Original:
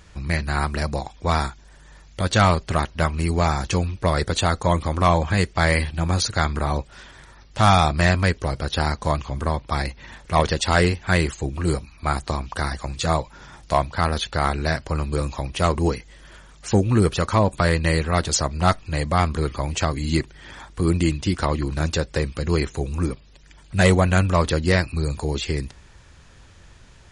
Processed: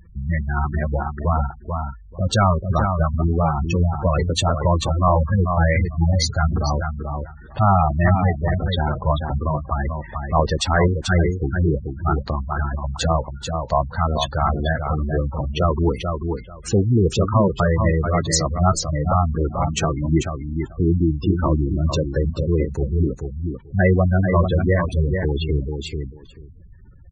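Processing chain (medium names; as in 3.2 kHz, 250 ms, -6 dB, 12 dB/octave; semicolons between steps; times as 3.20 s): in parallel at -8 dB: integer overflow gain 12 dB; on the sum: feedback delay 438 ms, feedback 17%, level -5.5 dB; spectral gate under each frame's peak -15 dB strong; 19.57–20.18 s: comb 6 ms, depth 31%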